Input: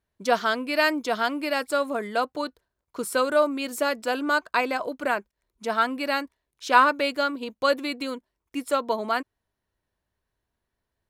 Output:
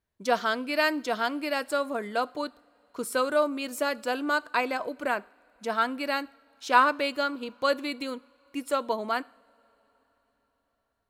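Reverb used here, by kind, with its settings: two-slope reverb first 0.51 s, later 4.9 s, from -20 dB, DRR 19.5 dB; trim -3 dB

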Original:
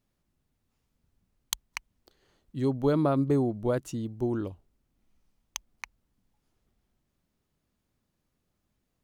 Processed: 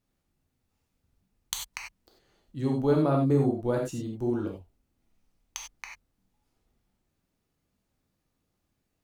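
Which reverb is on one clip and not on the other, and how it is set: gated-style reverb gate 120 ms flat, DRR -0.5 dB; trim -2.5 dB

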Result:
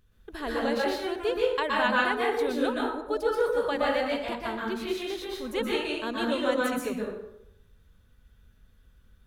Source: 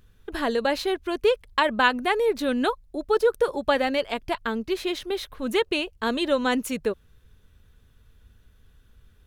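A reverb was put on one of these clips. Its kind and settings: plate-style reverb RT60 0.8 s, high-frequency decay 0.6×, pre-delay 110 ms, DRR -4 dB; trim -8.5 dB

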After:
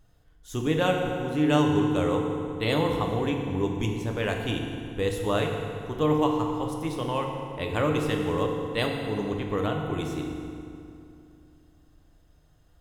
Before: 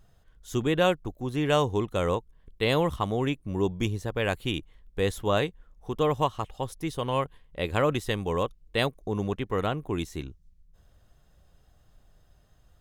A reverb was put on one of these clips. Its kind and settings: FDN reverb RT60 2.6 s, low-frequency decay 1.2×, high-frequency decay 0.7×, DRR 1 dB; trim -2.5 dB

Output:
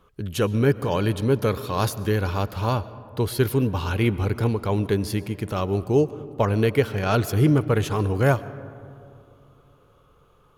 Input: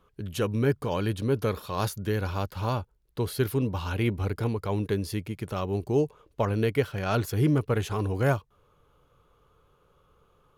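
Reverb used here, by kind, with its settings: algorithmic reverb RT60 2.7 s, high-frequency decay 0.3×, pre-delay 80 ms, DRR 16 dB; trim +5 dB

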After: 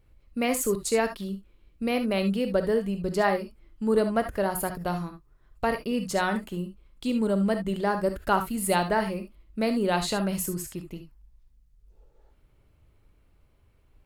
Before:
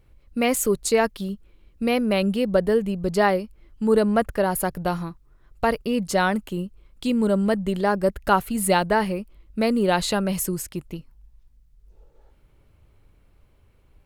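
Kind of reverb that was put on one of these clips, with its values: gated-style reverb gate 90 ms rising, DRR 7 dB; trim -5 dB

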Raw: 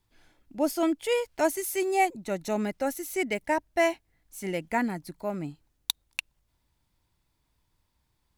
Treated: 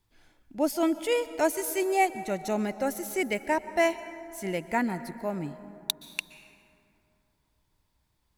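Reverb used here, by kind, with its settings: plate-style reverb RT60 3 s, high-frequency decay 0.4×, pre-delay 110 ms, DRR 13.5 dB

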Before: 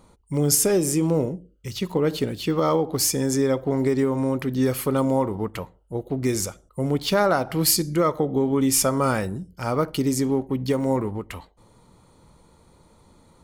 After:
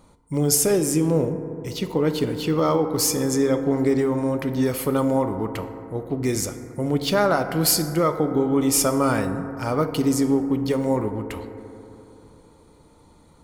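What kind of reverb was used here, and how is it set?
FDN reverb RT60 3.2 s, high-frequency decay 0.25×, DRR 8 dB

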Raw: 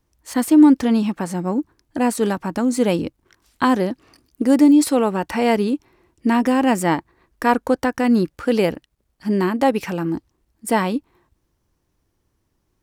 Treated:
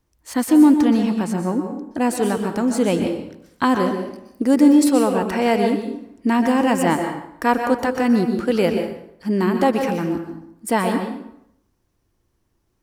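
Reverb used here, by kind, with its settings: plate-style reverb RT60 0.74 s, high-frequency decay 0.75×, pre-delay 110 ms, DRR 5 dB; trim -1 dB

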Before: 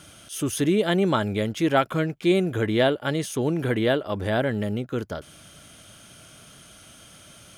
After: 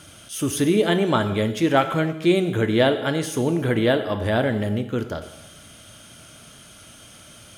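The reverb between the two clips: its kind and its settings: gated-style reverb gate 340 ms falling, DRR 8 dB; trim +2 dB

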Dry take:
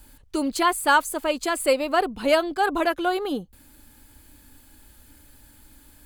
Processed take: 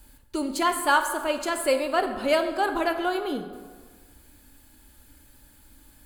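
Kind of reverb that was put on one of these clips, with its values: plate-style reverb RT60 1.5 s, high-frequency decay 0.6×, DRR 6.5 dB; trim -3 dB

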